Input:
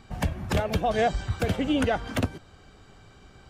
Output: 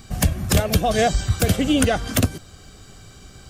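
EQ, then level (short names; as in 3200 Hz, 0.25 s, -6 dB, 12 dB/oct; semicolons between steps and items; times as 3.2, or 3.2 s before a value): tone controls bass +4 dB, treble +12 dB; high shelf 11000 Hz +7 dB; notch 900 Hz, Q 6.8; +4.5 dB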